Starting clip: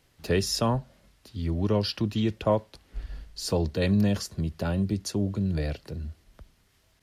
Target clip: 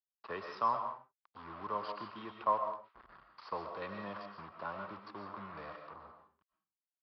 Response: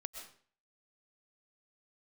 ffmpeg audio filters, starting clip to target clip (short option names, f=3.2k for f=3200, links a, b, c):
-filter_complex "[0:a]aresample=11025,acrusher=bits=5:mix=0:aa=0.5,aresample=44100,bandpass=f=1.1k:t=q:w=6.2:csg=0[a];[1:a]atrim=start_sample=2205,afade=t=out:st=0.36:d=0.01,atrim=end_sample=16317[b];[a][b]afir=irnorm=-1:irlink=0,volume=9dB"